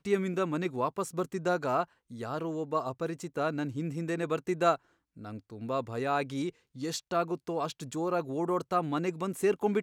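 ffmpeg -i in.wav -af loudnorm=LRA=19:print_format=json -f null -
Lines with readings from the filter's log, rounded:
"input_i" : "-32.0",
"input_tp" : "-12.6",
"input_lra" : "2.0",
"input_thresh" : "-42.2",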